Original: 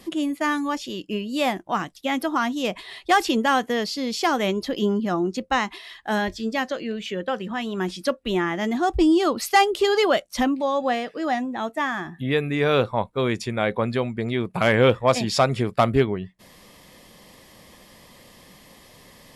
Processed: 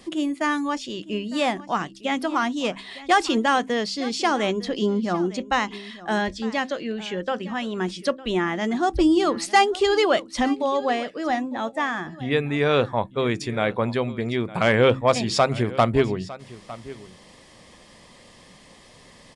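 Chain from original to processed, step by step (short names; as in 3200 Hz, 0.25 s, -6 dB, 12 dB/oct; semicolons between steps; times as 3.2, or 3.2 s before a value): de-hum 65.65 Hz, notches 5; on a send: echo 0.906 s -18 dB; on the sum: downsampling 22050 Hz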